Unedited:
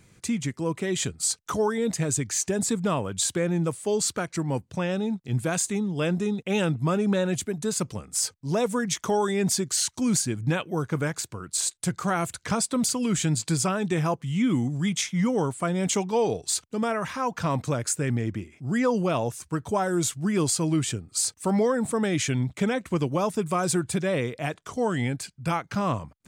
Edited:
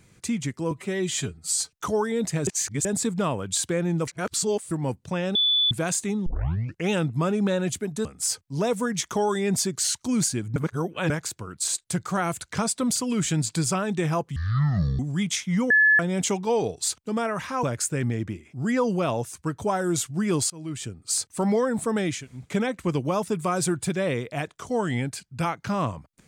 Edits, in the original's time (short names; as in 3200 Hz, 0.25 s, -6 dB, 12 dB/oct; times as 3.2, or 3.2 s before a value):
0.71–1.39 stretch 1.5×
2.13–2.51 reverse
3.73–4.37 reverse
5.01–5.37 bleep 3470 Hz -18 dBFS
5.92 tape start 0.64 s
7.71–7.98 cut
10.49–11.03 reverse
14.29–14.65 speed 57%
15.36–15.65 bleep 1720 Hz -14 dBFS
17.29–17.7 cut
20.57–21.2 fade in linear, from -24 dB
22.23–22.5 room tone, crossfade 0.24 s